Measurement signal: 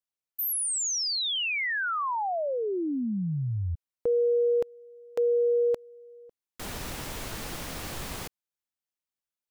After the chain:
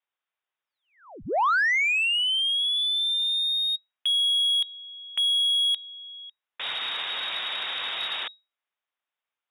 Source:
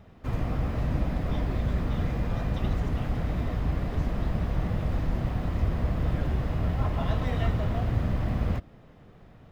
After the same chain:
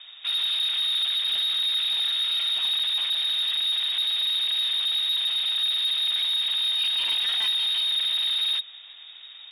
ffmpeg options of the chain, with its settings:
-filter_complex "[0:a]lowpass=f=3200:t=q:w=0.5098,lowpass=f=3200:t=q:w=0.6013,lowpass=f=3200:t=q:w=0.9,lowpass=f=3200:t=q:w=2.563,afreqshift=-3800,asplit=2[s0][s1];[s1]highpass=f=720:p=1,volume=7.94,asoftclip=type=tanh:threshold=0.237[s2];[s0][s2]amix=inputs=2:normalize=0,lowpass=f=2100:p=1,volume=0.501"

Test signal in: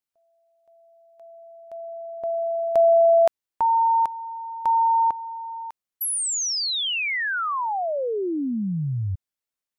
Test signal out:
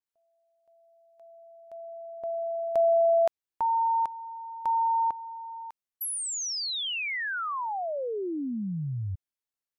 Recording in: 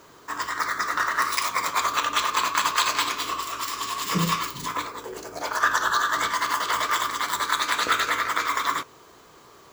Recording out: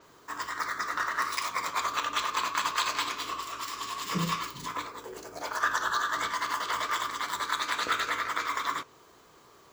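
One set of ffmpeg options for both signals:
-af "adynamicequalizer=threshold=0.00708:dfrequency=7900:dqfactor=0.7:tfrequency=7900:tqfactor=0.7:attack=5:release=100:ratio=0.375:range=2.5:mode=cutabove:tftype=highshelf,volume=0.501"

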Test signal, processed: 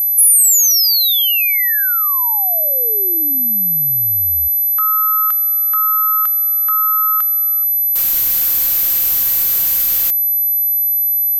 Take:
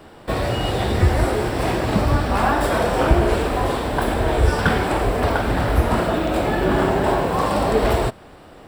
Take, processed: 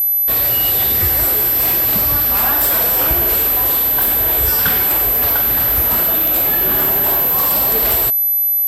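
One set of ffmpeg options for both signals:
-af "aeval=exprs='val(0)+0.0398*sin(2*PI*12000*n/s)':c=same,crystalizer=i=9:c=0,volume=0.422"

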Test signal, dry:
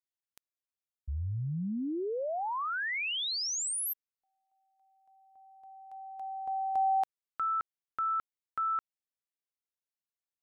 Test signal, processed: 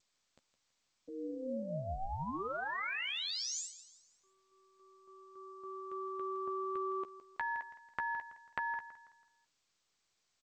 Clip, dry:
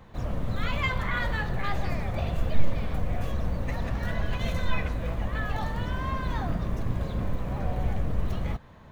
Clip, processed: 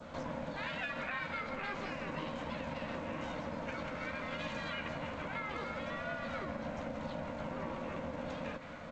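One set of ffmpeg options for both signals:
-filter_complex "[0:a]highpass=f=120:w=0.5412,highpass=f=120:w=1.3066,adynamicequalizer=threshold=0.00398:dfrequency=1900:dqfactor=1.3:tfrequency=1900:tqfactor=1.3:attack=5:release=100:ratio=0.45:range=2.5:mode=boostabove:tftype=bell,acompressor=threshold=0.00631:ratio=6:attack=11:release=167:knee=6:detection=peak,aeval=exprs='val(0)*sin(2*PI*390*n/s)':c=same,asplit=2[s0][s1];[s1]adelay=13,volume=0.355[s2];[s0][s2]amix=inputs=2:normalize=0,asplit=2[s3][s4];[s4]aecho=0:1:164|328|492|656:0.2|0.0778|0.0303|0.0118[s5];[s3][s5]amix=inputs=2:normalize=0,volume=2.37" -ar 16000 -c:a g722

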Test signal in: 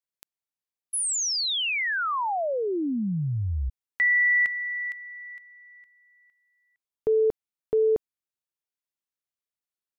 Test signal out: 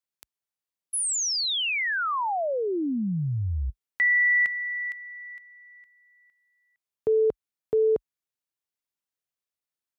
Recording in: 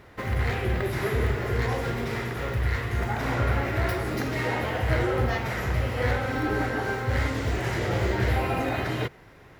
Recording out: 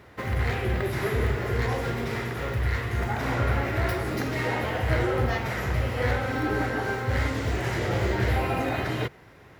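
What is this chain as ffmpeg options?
-af "highpass=f=47:w=0.5412,highpass=f=47:w=1.3066"

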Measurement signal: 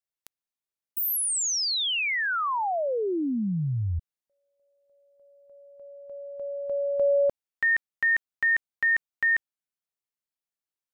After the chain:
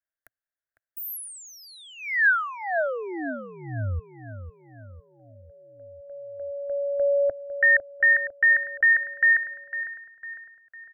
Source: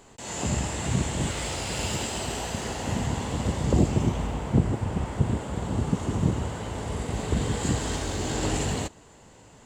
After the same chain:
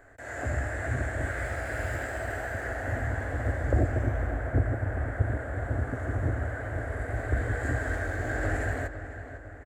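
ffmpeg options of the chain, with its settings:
-filter_complex "[0:a]firequalizer=gain_entry='entry(110,0);entry(170,-25);entry(270,-4);entry(410,-7);entry(650,4);entry(940,-13);entry(1600,11);entry(2800,-19);entry(5300,-21);entry(12000,-7)':delay=0.05:min_phase=1,asplit=2[s0][s1];[s1]adelay=503,lowpass=f=3100:p=1,volume=0.282,asplit=2[s2][s3];[s3]adelay=503,lowpass=f=3100:p=1,volume=0.51,asplit=2[s4][s5];[s5]adelay=503,lowpass=f=3100:p=1,volume=0.51,asplit=2[s6][s7];[s7]adelay=503,lowpass=f=3100:p=1,volume=0.51,asplit=2[s8][s9];[s9]adelay=503,lowpass=f=3100:p=1,volume=0.51[s10];[s2][s4][s6][s8][s10]amix=inputs=5:normalize=0[s11];[s0][s11]amix=inputs=2:normalize=0"

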